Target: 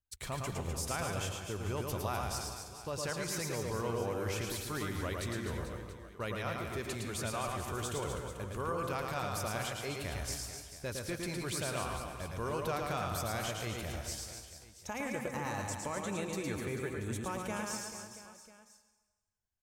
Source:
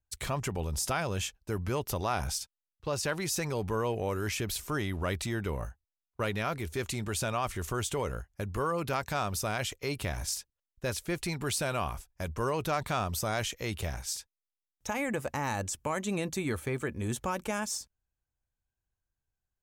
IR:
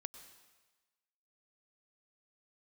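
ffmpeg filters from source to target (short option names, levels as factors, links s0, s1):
-filter_complex "[0:a]aecho=1:1:110|253|438.9|680.6|994.7:0.631|0.398|0.251|0.158|0.1[s0];[1:a]atrim=start_sample=2205[s1];[s0][s1]afir=irnorm=-1:irlink=0,volume=0.75"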